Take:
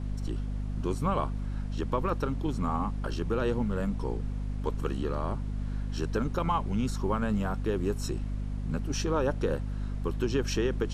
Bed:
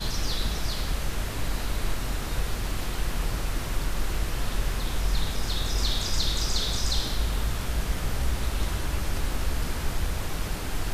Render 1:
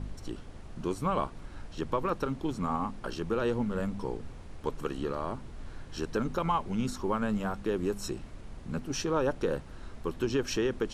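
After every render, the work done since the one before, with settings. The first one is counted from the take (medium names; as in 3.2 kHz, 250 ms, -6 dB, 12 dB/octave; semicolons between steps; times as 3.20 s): de-hum 50 Hz, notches 5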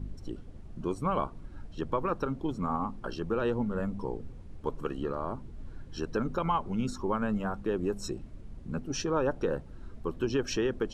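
noise reduction 11 dB, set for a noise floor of -46 dBFS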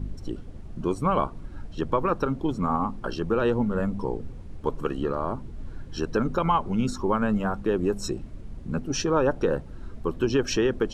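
trim +6 dB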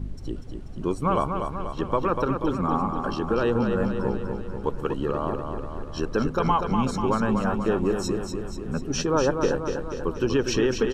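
feedback delay 243 ms, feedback 59%, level -6 dB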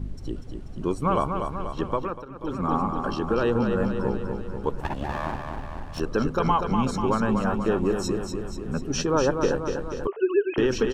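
1.84–2.71 s: dip -17.5 dB, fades 0.41 s; 4.80–6.00 s: comb filter that takes the minimum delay 1.1 ms; 10.07–10.58 s: formants replaced by sine waves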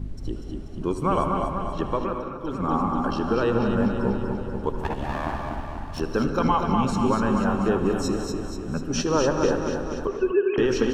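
on a send: tape echo 77 ms, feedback 83%, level -12 dB, low-pass 2.6 kHz; on the sum: gated-style reverb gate 270 ms rising, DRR 6.5 dB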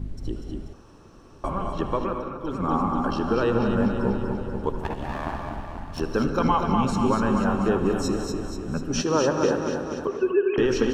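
0.73–1.44 s: room tone; 4.78–5.98 s: AM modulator 180 Hz, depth 30%; 9.02–10.42 s: high-pass 100 Hz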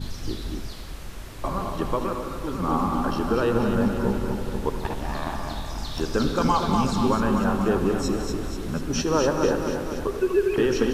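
add bed -9 dB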